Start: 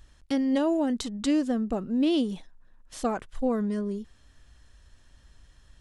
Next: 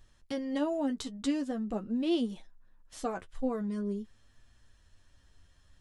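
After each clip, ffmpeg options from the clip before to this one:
ffmpeg -i in.wav -af "flanger=delay=8.6:depth=2.7:regen=27:speed=0.45:shape=sinusoidal,volume=-2dB" out.wav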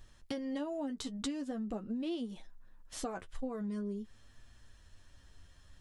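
ffmpeg -i in.wav -af "acompressor=threshold=-39dB:ratio=6,volume=3.5dB" out.wav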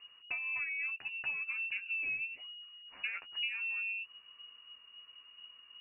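ffmpeg -i in.wav -af "lowpass=frequency=2500:width_type=q:width=0.5098,lowpass=frequency=2500:width_type=q:width=0.6013,lowpass=frequency=2500:width_type=q:width=0.9,lowpass=frequency=2500:width_type=q:width=2.563,afreqshift=-2900" out.wav

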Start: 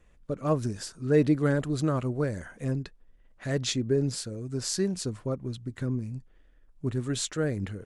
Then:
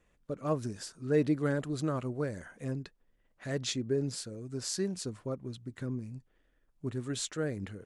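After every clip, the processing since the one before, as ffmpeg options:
ffmpeg -i in.wav -af "lowshelf=frequency=74:gain=-10.5,volume=-4.5dB" out.wav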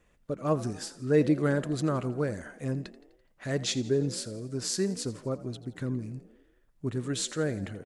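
ffmpeg -i in.wav -filter_complex "[0:a]asplit=6[link_01][link_02][link_03][link_04][link_05][link_06];[link_02]adelay=84,afreqshift=48,volume=-17.5dB[link_07];[link_03]adelay=168,afreqshift=96,volume=-22.4dB[link_08];[link_04]adelay=252,afreqshift=144,volume=-27.3dB[link_09];[link_05]adelay=336,afreqshift=192,volume=-32.1dB[link_10];[link_06]adelay=420,afreqshift=240,volume=-37dB[link_11];[link_01][link_07][link_08][link_09][link_10][link_11]amix=inputs=6:normalize=0,volume=4dB" out.wav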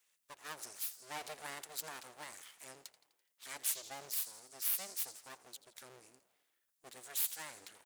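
ffmpeg -i in.wav -filter_complex "[0:a]acrossover=split=460[link_01][link_02];[link_02]acompressor=threshold=-30dB:ratio=2[link_03];[link_01][link_03]amix=inputs=2:normalize=0,aeval=exprs='abs(val(0))':channel_layout=same,aderivative,volume=3dB" out.wav

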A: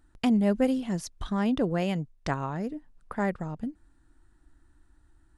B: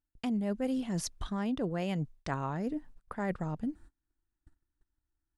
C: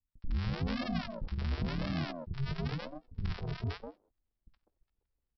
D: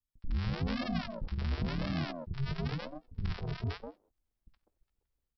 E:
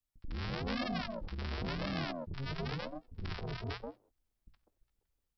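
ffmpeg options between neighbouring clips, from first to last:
ffmpeg -i in.wav -af "agate=range=-28dB:threshold=-52dB:ratio=16:detection=peak,areverse,acompressor=threshold=-35dB:ratio=4,areverse,volume=3.5dB" out.wav
ffmpeg -i in.wav -filter_complex "[0:a]aresample=11025,acrusher=samples=32:mix=1:aa=0.000001:lfo=1:lforange=19.2:lforate=0.96,aresample=44100,acrossover=split=290|900[link_01][link_02][link_03];[link_03]adelay=70[link_04];[link_02]adelay=200[link_05];[link_01][link_05][link_04]amix=inputs=3:normalize=0" out.wav
ffmpeg -i in.wav -af "dynaudnorm=framelen=150:gausssize=3:maxgain=5dB,volume=-4.5dB" out.wav
ffmpeg -i in.wav -filter_complex "[0:a]bandreject=frequency=60:width_type=h:width=6,bandreject=frequency=120:width_type=h:width=6,acrossover=split=310|1200[link_01][link_02][link_03];[link_01]asoftclip=type=tanh:threshold=-38dB[link_04];[link_04][link_02][link_03]amix=inputs=3:normalize=0,volume=1dB" out.wav

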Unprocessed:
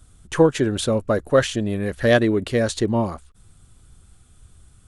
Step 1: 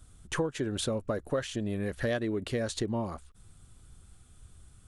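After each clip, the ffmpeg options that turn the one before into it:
ffmpeg -i in.wav -af "acompressor=threshold=-25dB:ratio=4,volume=-4dB" out.wav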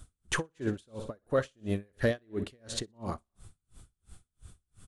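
ffmpeg -i in.wav -af "aecho=1:1:61|122|183|244|305:0.188|0.0979|0.0509|0.0265|0.0138,aeval=exprs='val(0)*pow(10,-39*(0.5-0.5*cos(2*PI*2.9*n/s))/20)':channel_layout=same,volume=5dB" out.wav

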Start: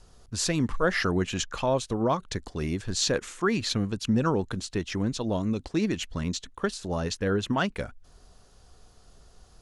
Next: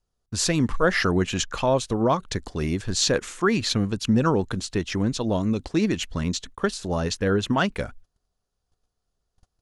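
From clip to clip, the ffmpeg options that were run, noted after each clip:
ffmpeg -i in.wav -af "agate=range=-28dB:threshold=-46dB:ratio=16:detection=peak,volume=4dB" out.wav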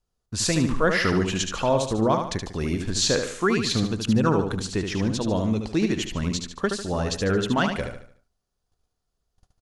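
ffmpeg -i in.wav -af "aecho=1:1:74|148|222|296|370:0.501|0.195|0.0762|0.0297|0.0116,volume=-1dB" out.wav

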